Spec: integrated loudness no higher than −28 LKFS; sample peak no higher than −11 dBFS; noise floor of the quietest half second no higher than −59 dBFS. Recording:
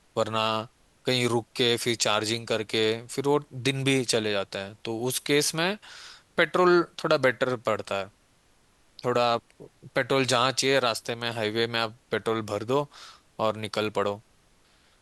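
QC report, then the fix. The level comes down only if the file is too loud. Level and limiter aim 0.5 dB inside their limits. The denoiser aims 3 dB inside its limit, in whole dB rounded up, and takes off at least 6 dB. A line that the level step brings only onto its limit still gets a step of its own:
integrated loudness −26.0 LKFS: out of spec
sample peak −7.0 dBFS: out of spec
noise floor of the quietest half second −63 dBFS: in spec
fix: level −2.5 dB
brickwall limiter −11.5 dBFS

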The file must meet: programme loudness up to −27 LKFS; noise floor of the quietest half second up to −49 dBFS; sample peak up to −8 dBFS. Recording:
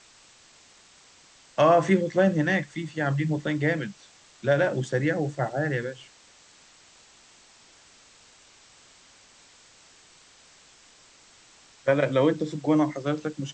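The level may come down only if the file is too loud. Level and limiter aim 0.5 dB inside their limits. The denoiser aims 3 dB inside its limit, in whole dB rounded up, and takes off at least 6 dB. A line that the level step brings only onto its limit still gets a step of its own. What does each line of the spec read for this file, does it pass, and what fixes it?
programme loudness −25.0 LKFS: out of spec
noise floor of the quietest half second −55 dBFS: in spec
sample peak −9.0 dBFS: in spec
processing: level −2.5 dB

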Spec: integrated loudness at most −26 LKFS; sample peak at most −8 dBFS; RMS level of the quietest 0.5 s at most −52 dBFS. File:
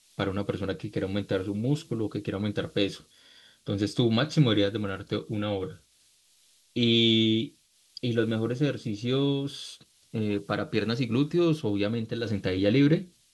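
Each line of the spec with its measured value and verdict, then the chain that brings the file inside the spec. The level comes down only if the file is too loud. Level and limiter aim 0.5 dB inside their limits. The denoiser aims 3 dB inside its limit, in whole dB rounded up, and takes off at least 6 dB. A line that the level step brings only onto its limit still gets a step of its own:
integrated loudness −27.5 LKFS: in spec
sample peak −10.0 dBFS: in spec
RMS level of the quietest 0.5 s −64 dBFS: in spec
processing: no processing needed

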